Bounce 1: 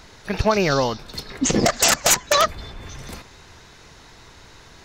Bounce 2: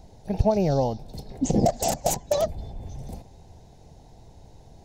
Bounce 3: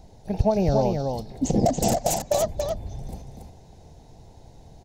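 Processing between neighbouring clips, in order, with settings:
EQ curve 160 Hz 0 dB, 370 Hz -7 dB, 790 Hz -1 dB, 1200 Hz -27 dB, 9600 Hz -11 dB; gain +1.5 dB
echo 0.281 s -4.5 dB

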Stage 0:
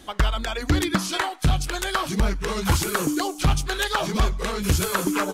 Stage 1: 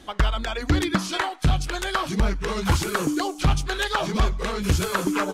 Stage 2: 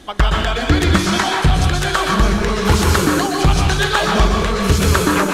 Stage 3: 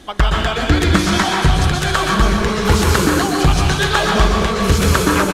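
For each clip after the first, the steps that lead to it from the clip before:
high shelf 9000 Hz -10.5 dB
plate-style reverb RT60 0.8 s, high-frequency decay 0.95×, pre-delay 0.11 s, DRR -0.5 dB; gain +6 dB
echo 0.258 s -8.5 dB

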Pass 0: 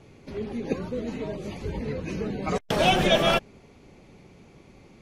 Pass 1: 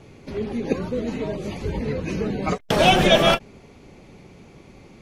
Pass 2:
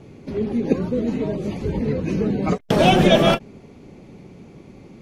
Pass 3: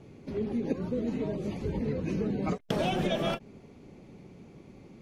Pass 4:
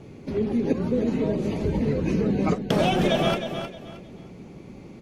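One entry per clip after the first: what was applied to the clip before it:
ending taper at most 440 dB/s; gain +5 dB
bell 220 Hz +8.5 dB 2.8 oct; gain -3 dB
compressor 6:1, threshold -18 dBFS, peak gain reduction 9 dB; gain -7.5 dB
feedback echo 0.312 s, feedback 27%, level -8.5 dB; gain +7 dB

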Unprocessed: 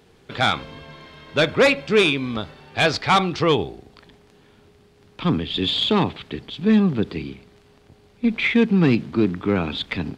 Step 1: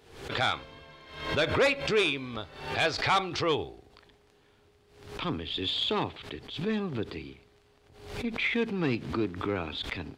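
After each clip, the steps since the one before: bell 190 Hz -9.5 dB 0.87 oct; backwards sustainer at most 84 dB/s; gain -8 dB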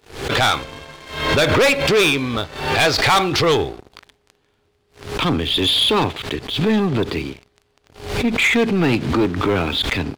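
sample leveller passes 3; gain +4.5 dB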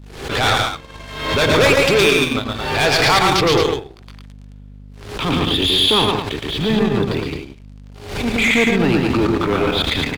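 tapped delay 0.115/0.142/0.218 s -3/-7.5/-6 dB; hum 50 Hz, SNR 20 dB; transient shaper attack -7 dB, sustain -11 dB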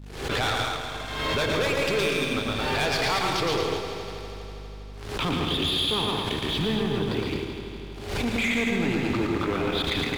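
compressor 5:1, threshold -21 dBFS, peak gain reduction 10.5 dB; on a send: multi-head echo 81 ms, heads second and third, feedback 69%, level -11 dB; on the sum: gain -3 dB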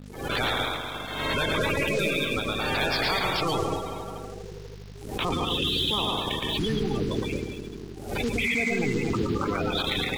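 bin magnitudes rounded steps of 30 dB; in parallel at -8 dB: sample gate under -35.5 dBFS; on the sum: gain -3 dB

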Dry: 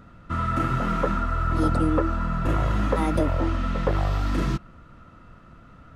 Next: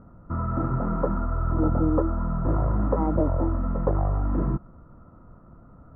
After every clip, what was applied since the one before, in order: LPF 1100 Hz 24 dB/oct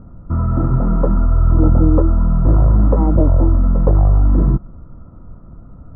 tilt -2.5 dB/oct; gain +3 dB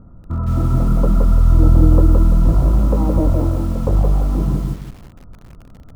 lo-fi delay 0.169 s, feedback 35%, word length 6-bit, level -3 dB; gain -4 dB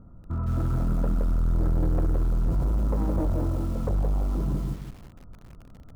soft clip -13 dBFS, distortion -10 dB; gain -6.5 dB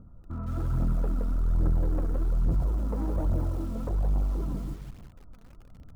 phaser 1.2 Hz, delay 4.6 ms, feedback 43%; gain -5 dB

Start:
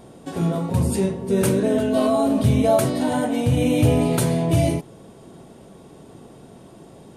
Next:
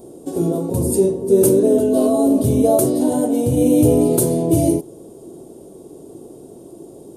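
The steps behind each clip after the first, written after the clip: EQ curve 210 Hz 0 dB, 340 Hz +13 dB, 1900 Hz -14 dB, 11000 Hz +12 dB; gain -1.5 dB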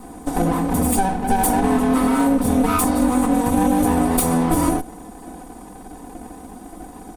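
minimum comb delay 0.86 ms; comb 4 ms, depth 89%; compressor, threshold -16 dBFS, peak gain reduction 8 dB; gain +2 dB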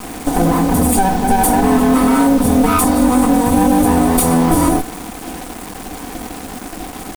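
in parallel at +3 dB: limiter -14.5 dBFS, peak gain reduction 8.5 dB; on the sum: bit-crush 5-bit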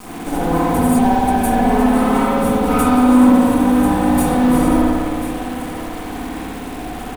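limiter -6.5 dBFS, peak gain reduction 4.5 dB; echo 1.041 s -12.5 dB; spring tank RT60 2.1 s, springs 56 ms, chirp 30 ms, DRR -7.5 dB; gain -7.5 dB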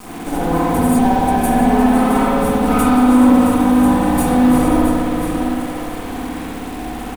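echo 0.669 s -9 dB

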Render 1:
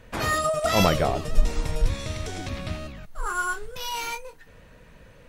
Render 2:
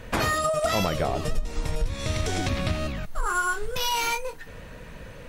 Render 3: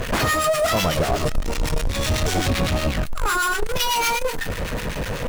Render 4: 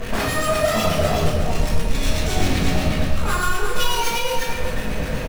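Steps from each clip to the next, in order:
compressor 8:1, threshold -30 dBFS, peak gain reduction 20 dB; gain +8.5 dB
power-law curve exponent 0.35; harmonic tremolo 8 Hz, depth 70%, crossover 1200 Hz
echo 0.353 s -5.5 dB; shoebox room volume 290 m³, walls mixed, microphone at 1.6 m; gain -6 dB

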